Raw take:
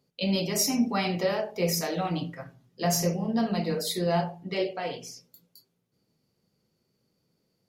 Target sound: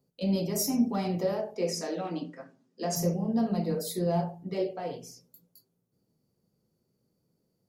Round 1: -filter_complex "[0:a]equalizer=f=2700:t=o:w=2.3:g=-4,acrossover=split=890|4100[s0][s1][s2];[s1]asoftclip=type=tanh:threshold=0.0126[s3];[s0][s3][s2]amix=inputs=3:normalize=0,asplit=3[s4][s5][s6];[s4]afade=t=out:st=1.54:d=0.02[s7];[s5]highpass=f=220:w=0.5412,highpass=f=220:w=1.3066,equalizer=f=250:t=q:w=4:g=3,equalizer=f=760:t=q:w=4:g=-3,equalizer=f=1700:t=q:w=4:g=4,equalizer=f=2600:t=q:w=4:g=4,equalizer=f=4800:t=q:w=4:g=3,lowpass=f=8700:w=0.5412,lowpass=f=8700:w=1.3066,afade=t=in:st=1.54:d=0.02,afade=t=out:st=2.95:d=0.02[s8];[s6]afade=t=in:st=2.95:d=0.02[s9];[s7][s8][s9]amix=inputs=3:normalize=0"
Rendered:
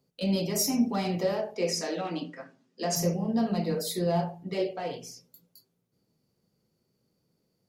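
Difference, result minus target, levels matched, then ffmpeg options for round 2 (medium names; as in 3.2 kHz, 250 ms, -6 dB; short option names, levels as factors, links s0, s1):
2 kHz band +4.5 dB
-filter_complex "[0:a]equalizer=f=2700:t=o:w=2.3:g=-12,acrossover=split=890|4100[s0][s1][s2];[s1]asoftclip=type=tanh:threshold=0.0126[s3];[s0][s3][s2]amix=inputs=3:normalize=0,asplit=3[s4][s5][s6];[s4]afade=t=out:st=1.54:d=0.02[s7];[s5]highpass=f=220:w=0.5412,highpass=f=220:w=1.3066,equalizer=f=250:t=q:w=4:g=3,equalizer=f=760:t=q:w=4:g=-3,equalizer=f=1700:t=q:w=4:g=4,equalizer=f=2600:t=q:w=4:g=4,equalizer=f=4800:t=q:w=4:g=3,lowpass=f=8700:w=0.5412,lowpass=f=8700:w=1.3066,afade=t=in:st=1.54:d=0.02,afade=t=out:st=2.95:d=0.02[s8];[s6]afade=t=in:st=2.95:d=0.02[s9];[s7][s8][s9]amix=inputs=3:normalize=0"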